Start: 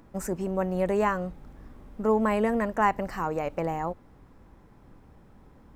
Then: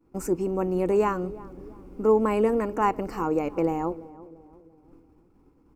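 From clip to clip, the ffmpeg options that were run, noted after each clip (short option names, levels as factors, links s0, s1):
-filter_complex "[0:a]agate=range=0.0224:threshold=0.00562:ratio=3:detection=peak,superequalizer=6b=3.16:7b=1.78:8b=0.631:11b=0.447:13b=0.501,asplit=2[s0][s1];[s1]adelay=341,lowpass=f=910:p=1,volume=0.141,asplit=2[s2][s3];[s3]adelay=341,lowpass=f=910:p=1,volume=0.51,asplit=2[s4][s5];[s5]adelay=341,lowpass=f=910:p=1,volume=0.51,asplit=2[s6][s7];[s7]adelay=341,lowpass=f=910:p=1,volume=0.51[s8];[s0][s2][s4][s6][s8]amix=inputs=5:normalize=0"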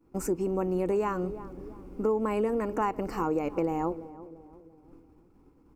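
-af "acompressor=threshold=0.0631:ratio=6"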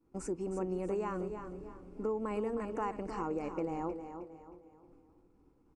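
-af "aecho=1:1:313|626|939|1252:0.355|0.128|0.046|0.0166,aresample=22050,aresample=44100,volume=0.398"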